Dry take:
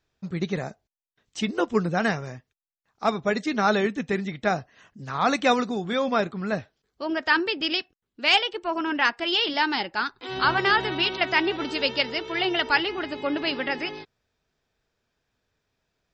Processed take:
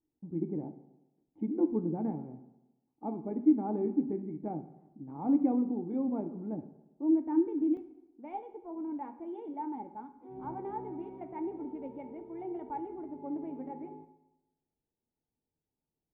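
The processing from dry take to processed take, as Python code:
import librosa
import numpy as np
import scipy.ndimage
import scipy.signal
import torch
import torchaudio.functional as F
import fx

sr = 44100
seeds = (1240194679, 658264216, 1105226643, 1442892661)

y = fx.formant_cascade(x, sr, vowel='u')
y = fx.peak_eq(y, sr, hz=300.0, db=fx.steps((0.0, 7.0), (7.77, -7.5)), octaves=0.43)
y = fx.rev_fdn(y, sr, rt60_s=0.99, lf_ratio=1.0, hf_ratio=0.8, size_ms=38.0, drr_db=8.0)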